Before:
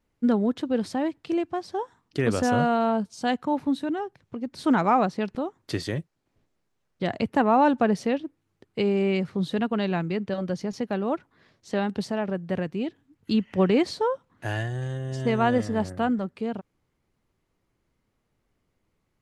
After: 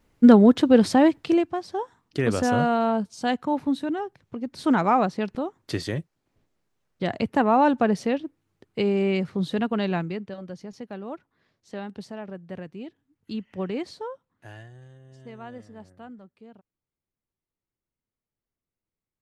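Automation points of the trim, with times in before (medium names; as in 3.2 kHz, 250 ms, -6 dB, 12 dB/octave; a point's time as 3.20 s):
1.17 s +9.5 dB
1.57 s +0.5 dB
9.97 s +0.5 dB
10.37 s -9 dB
13.96 s -9 dB
14.95 s -18.5 dB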